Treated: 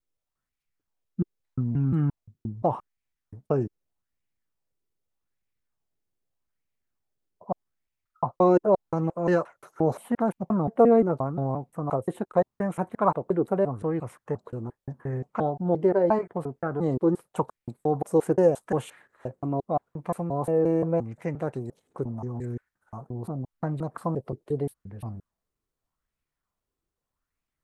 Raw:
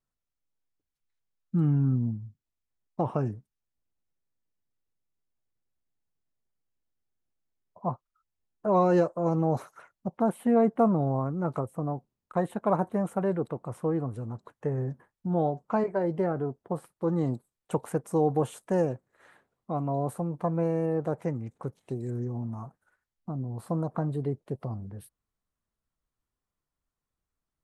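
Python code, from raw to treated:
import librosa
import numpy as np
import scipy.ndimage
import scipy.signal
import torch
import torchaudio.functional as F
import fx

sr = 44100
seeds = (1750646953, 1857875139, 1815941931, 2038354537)

y = fx.block_reorder(x, sr, ms=175.0, group=3)
y = fx.bell_lfo(y, sr, hz=0.82, low_hz=350.0, high_hz=2400.0, db=9)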